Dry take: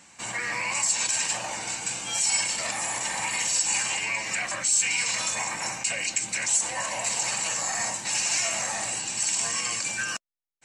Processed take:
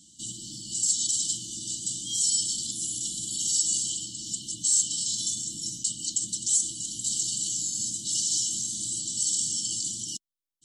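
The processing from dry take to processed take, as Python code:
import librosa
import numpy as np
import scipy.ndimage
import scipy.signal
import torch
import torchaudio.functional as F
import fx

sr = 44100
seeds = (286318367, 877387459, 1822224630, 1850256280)

y = fx.brickwall_bandstop(x, sr, low_hz=360.0, high_hz=2900.0)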